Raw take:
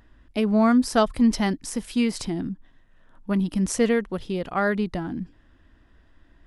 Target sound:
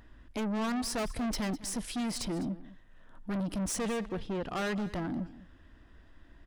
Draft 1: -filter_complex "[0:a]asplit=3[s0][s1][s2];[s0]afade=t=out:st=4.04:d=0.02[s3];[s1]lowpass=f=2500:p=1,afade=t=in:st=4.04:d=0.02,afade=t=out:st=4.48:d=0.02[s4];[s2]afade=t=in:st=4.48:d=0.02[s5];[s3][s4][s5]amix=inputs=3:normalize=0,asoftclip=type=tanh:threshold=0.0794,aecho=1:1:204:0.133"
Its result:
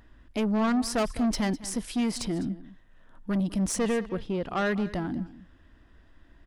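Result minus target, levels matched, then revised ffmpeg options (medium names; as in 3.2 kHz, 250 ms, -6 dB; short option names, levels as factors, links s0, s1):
saturation: distortion -5 dB
-filter_complex "[0:a]asplit=3[s0][s1][s2];[s0]afade=t=out:st=4.04:d=0.02[s3];[s1]lowpass=f=2500:p=1,afade=t=in:st=4.04:d=0.02,afade=t=out:st=4.48:d=0.02[s4];[s2]afade=t=in:st=4.48:d=0.02[s5];[s3][s4][s5]amix=inputs=3:normalize=0,asoftclip=type=tanh:threshold=0.0299,aecho=1:1:204:0.133"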